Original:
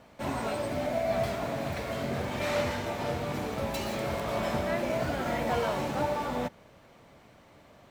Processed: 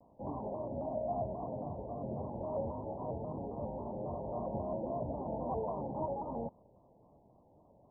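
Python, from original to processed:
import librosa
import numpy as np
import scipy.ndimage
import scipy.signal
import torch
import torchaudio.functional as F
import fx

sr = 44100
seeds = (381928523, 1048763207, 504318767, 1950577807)

y = scipy.signal.sosfilt(scipy.signal.butter(16, 1000.0, 'lowpass', fs=sr, output='sos'), x)
y = fx.vibrato_shape(y, sr, shape='square', rate_hz=3.7, depth_cents=100.0)
y = F.gain(torch.from_numpy(y), -7.0).numpy()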